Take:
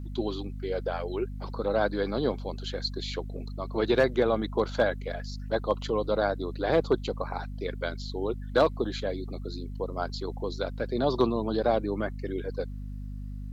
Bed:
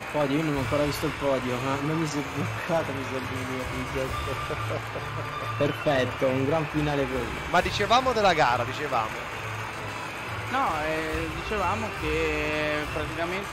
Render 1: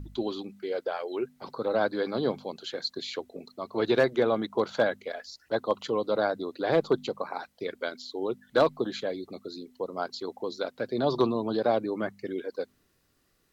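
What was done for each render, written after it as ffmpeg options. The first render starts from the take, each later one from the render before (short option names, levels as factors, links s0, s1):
-af "bandreject=f=50:t=h:w=4,bandreject=f=100:t=h:w=4,bandreject=f=150:t=h:w=4,bandreject=f=200:t=h:w=4,bandreject=f=250:t=h:w=4"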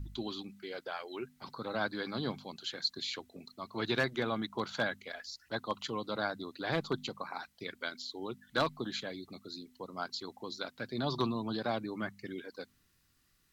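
-af "equalizer=f=490:w=0.9:g=-13.5"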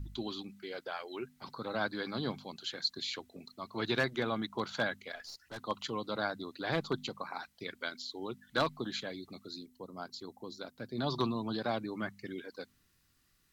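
-filter_complex "[0:a]asettb=1/sr,asplit=3[s0][s1][s2];[s0]atrim=end=5.154[s3];[s1]atrim=start=5.15:end=5.59,asetpts=PTS-STARTPTS,afade=t=in:d=0.004:c=qsin,afade=t=out:st=0.436:d=0.004:c=qsin,aeval=exprs='(tanh(100*val(0)+0.25)-tanh(0.25))/100':c=same[s4];[s2]atrim=start=5.586[s5];[s3][s4]acrossfade=d=0.004:c1=hsin:c2=qsin[s6];[s6][s5]acrossfade=d=0.004:c1=qsin:c2=hsin,asettb=1/sr,asplit=3[s7][s8][s9];[s7]atrim=end=9.664[s10];[s8]atrim=start=9.66:end=10.98,asetpts=PTS-STARTPTS,afade=t=in:d=0.004:c=qsin,afade=t=out:st=1.316:d=0.004:c=qsin,equalizer=f=2300:t=o:w=3:g=-8.5[s11];[s9]atrim=start=10.976[s12];[s10][s11]acrossfade=d=0.004:c1=hsin:c2=qsin[s13];[s13][s12]acrossfade=d=0.004:c1=qsin:c2=hsin"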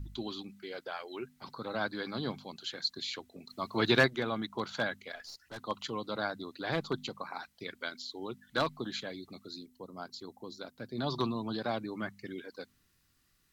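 -filter_complex "[0:a]asplit=3[s0][s1][s2];[s0]afade=t=out:st=3.49:d=0.02[s3];[s1]acontrast=66,afade=t=in:st=3.49:d=0.02,afade=t=out:st=4.06:d=0.02[s4];[s2]afade=t=in:st=4.06:d=0.02[s5];[s3][s4][s5]amix=inputs=3:normalize=0"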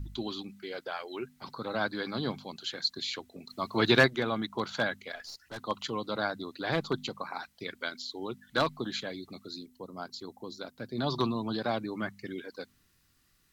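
-af "volume=1.41"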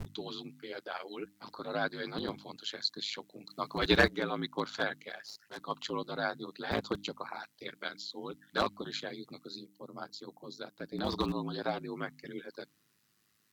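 -filter_complex "[0:a]aeval=exprs='val(0)*sin(2*PI*53*n/s)':c=same,acrossover=split=110[s0][s1];[s0]acrusher=bits=6:mix=0:aa=0.000001[s2];[s2][s1]amix=inputs=2:normalize=0"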